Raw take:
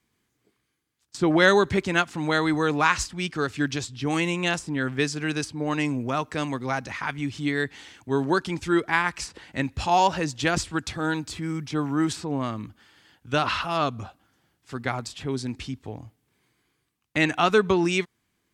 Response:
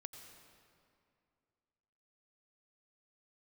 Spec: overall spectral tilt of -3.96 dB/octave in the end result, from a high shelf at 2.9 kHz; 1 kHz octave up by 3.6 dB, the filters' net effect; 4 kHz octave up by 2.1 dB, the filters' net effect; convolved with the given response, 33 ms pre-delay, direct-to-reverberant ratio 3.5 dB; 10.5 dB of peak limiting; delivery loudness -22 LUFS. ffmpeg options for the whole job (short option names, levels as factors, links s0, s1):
-filter_complex "[0:a]equalizer=f=1000:t=o:g=5,highshelf=f=2900:g=-5.5,equalizer=f=4000:t=o:g=6.5,alimiter=limit=0.2:level=0:latency=1,asplit=2[s0][s1];[1:a]atrim=start_sample=2205,adelay=33[s2];[s1][s2]afir=irnorm=-1:irlink=0,volume=1.19[s3];[s0][s3]amix=inputs=2:normalize=0,volume=1.5"